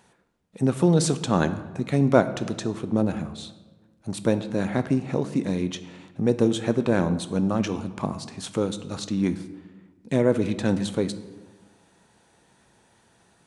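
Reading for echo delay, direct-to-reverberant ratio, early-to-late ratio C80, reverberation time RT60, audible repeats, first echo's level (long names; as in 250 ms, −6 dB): no echo audible, 11.0 dB, 15.0 dB, 1.3 s, no echo audible, no echo audible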